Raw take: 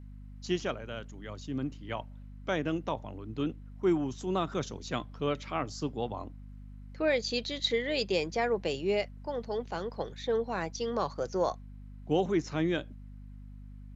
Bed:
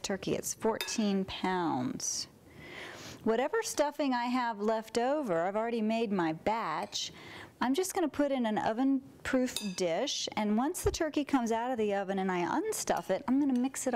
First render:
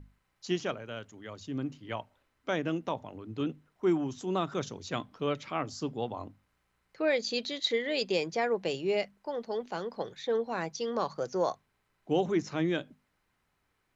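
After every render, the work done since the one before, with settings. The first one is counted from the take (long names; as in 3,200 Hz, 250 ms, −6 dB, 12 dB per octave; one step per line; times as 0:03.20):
mains-hum notches 50/100/150/200/250 Hz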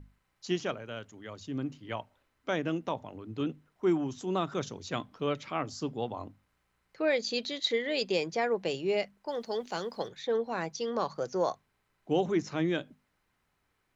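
0:09.28–0:10.08: high-shelf EQ 3,500 Hz +12 dB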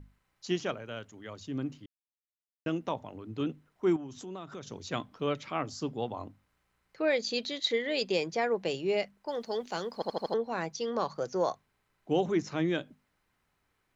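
0:01.86–0:02.66: silence
0:03.96–0:04.72: downward compressor 3 to 1, threshold −41 dBFS
0:09.94: stutter in place 0.08 s, 5 plays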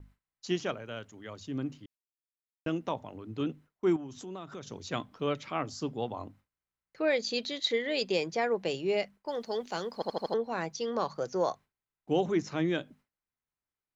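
noise gate with hold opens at −47 dBFS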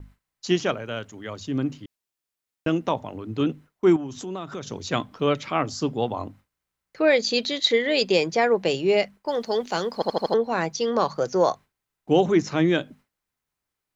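level +9 dB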